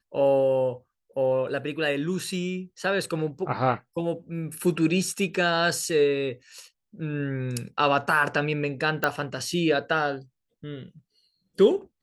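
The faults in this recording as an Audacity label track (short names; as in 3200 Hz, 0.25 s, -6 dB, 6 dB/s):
9.040000	9.040000	pop -9 dBFS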